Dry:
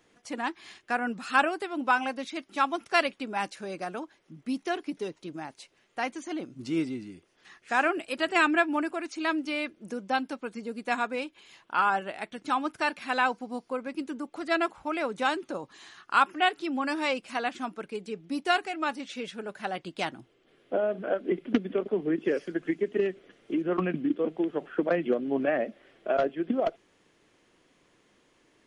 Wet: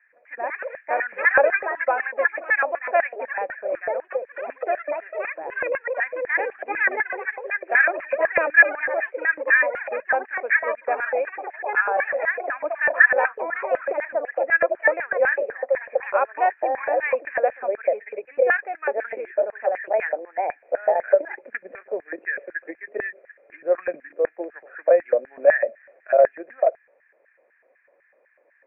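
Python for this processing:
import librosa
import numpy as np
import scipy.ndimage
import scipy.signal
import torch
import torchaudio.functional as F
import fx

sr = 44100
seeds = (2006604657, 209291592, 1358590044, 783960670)

y = fx.echo_pitch(x, sr, ms=169, semitones=4, count=3, db_per_echo=-3.0)
y = fx.filter_lfo_highpass(y, sr, shape='square', hz=4.0, low_hz=550.0, high_hz=1700.0, q=6.5)
y = scipy.signal.sosfilt(scipy.signal.cheby1(6, 6, 2500.0, 'lowpass', fs=sr, output='sos'), y)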